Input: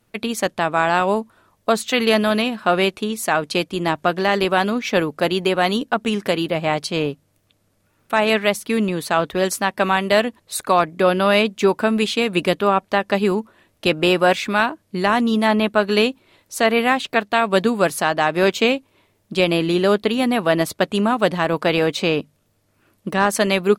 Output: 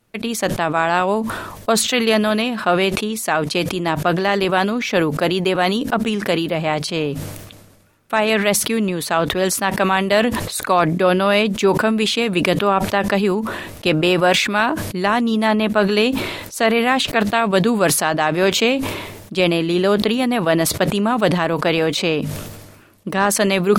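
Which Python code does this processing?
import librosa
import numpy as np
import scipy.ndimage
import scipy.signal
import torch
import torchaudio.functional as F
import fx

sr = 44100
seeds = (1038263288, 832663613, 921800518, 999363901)

y = fx.sustainer(x, sr, db_per_s=44.0)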